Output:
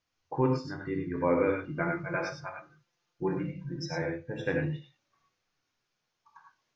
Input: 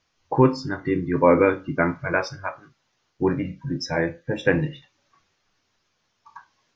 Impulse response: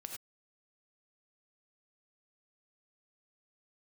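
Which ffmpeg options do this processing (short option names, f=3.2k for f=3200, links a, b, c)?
-filter_complex "[0:a]asettb=1/sr,asplit=3[a][b][c];[a]atrim=end=1.704[d];[b]atrim=start=1.7:end=4.02,asetpts=PTS-STARTPTS,afade=t=in:d=0.004:c=qsin,afade=t=out:st=2.316:d=0.004:c=qsin,aecho=1:1:5.8:0.69,atrim=end_sample=102312[e];[c]atrim=start=4.016[f];[d][e]acrossfade=d=0.004:c1=hsin:c2=qsin[g];[g][f]acrossfade=d=0.004:c1=qsin:c2=hsin[h];[1:a]atrim=start_sample=2205,asetrate=42336,aresample=44100[i];[h][i]afir=irnorm=-1:irlink=0,volume=-7dB"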